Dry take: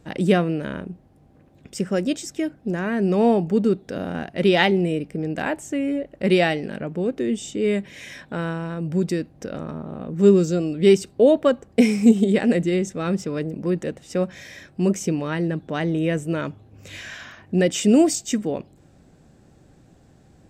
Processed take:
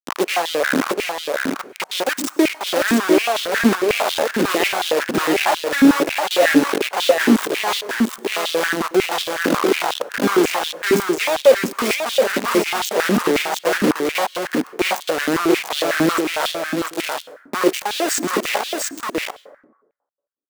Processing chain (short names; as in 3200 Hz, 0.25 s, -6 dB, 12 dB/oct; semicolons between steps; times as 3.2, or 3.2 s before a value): bin magnitudes rounded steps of 15 dB; dynamic EQ 1500 Hz, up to -4 dB, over -35 dBFS, Q 0.77; reverse; compressor 10:1, threshold -27 dBFS, peak gain reduction 18 dB; reverse; bit-crush 5-bit; in parallel at -2 dB: vocal rider 0.5 s; on the sum: echo 0.695 s -3.5 dB; plate-style reverb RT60 1 s, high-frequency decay 0.4×, pre-delay 85 ms, DRR 16.5 dB; stepped high-pass 11 Hz 260–3400 Hz; gain +3.5 dB